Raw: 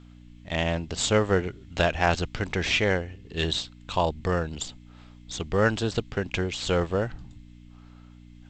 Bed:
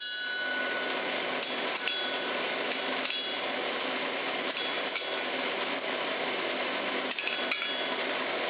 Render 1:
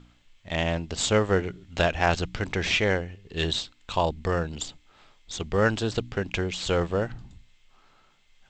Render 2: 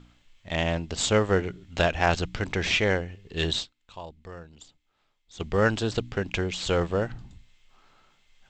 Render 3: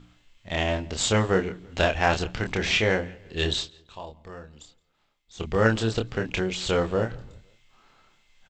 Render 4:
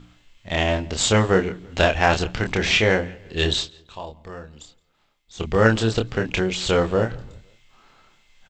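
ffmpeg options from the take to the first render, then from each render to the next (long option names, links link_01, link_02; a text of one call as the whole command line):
ffmpeg -i in.wav -af "bandreject=frequency=60:width_type=h:width=4,bandreject=frequency=120:width_type=h:width=4,bandreject=frequency=180:width_type=h:width=4,bandreject=frequency=240:width_type=h:width=4,bandreject=frequency=300:width_type=h:width=4" out.wav
ffmpeg -i in.wav -filter_complex "[0:a]asplit=3[link_01][link_02][link_03];[link_01]atrim=end=3.9,asetpts=PTS-STARTPTS,afade=type=out:start_time=3.63:duration=0.27:curve=exp:silence=0.158489[link_04];[link_02]atrim=start=3.9:end=5.14,asetpts=PTS-STARTPTS,volume=-16dB[link_05];[link_03]atrim=start=5.14,asetpts=PTS-STARTPTS,afade=type=in:duration=0.27:curve=exp:silence=0.158489[link_06];[link_04][link_05][link_06]concat=n=3:v=0:a=1" out.wav
ffmpeg -i in.wav -filter_complex "[0:a]asplit=2[link_01][link_02];[link_02]adelay=27,volume=-5dB[link_03];[link_01][link_03]amix=inputs=2:normalize=0,asplit=2[link_04][link_05];[link_05]adelay=169,lowpass=frequency=3700:poles=1,volume=-23.5dB,asplit=2[link_06][link_07];[link_07]adelay=169,lowpass=frequency=3700:poles=1,volume=0.4,asplit=2[link_08][link_09];[link_09]adelay=169,lowpass=frequency=3700:poles=1,volume=0.4[link_10];[link_04][link_06][link_08][link_10]amix=inputs=4:normalize=0" out.wav
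ffmpeg -i in.wav -af "volume=4.5dB,alimiter=limit=-3dB:level=0:latency=1" out.wav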